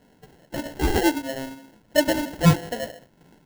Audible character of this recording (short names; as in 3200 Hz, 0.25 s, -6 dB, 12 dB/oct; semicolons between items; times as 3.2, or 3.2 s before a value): phasing stages 12, 3.1 Hz, lowest notch 510–3300 Hz; aliases and images of a low sample rate 1200 Hz, jitter 0%